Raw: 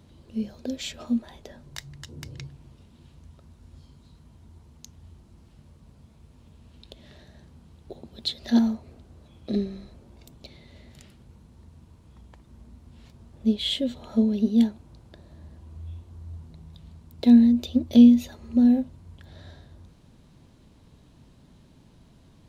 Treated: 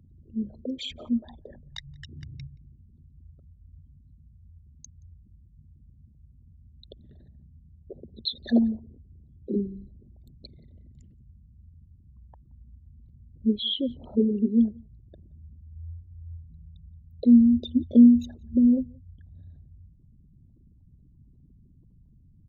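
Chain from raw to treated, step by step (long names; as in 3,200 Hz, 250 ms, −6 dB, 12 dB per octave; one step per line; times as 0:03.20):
spectral envelope exaggerated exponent 3
slap from a distant wall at 30 metres, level −28 dB
level −1 dB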